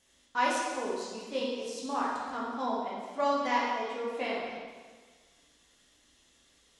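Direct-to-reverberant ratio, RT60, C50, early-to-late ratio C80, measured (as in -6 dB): -6.0 dB, 1.5 s, -1.0 dB, 2.0 dB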